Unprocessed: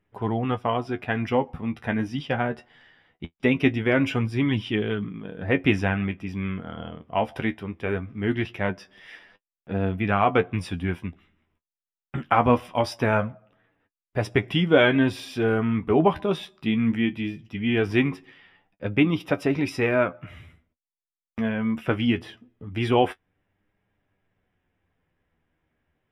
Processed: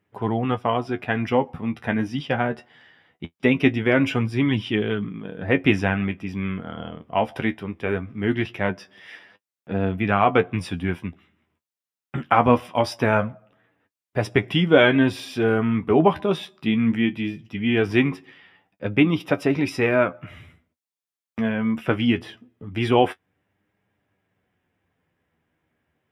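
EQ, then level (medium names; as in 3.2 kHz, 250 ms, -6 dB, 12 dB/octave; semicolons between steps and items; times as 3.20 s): high-pass 88 Hz; +2.5 dB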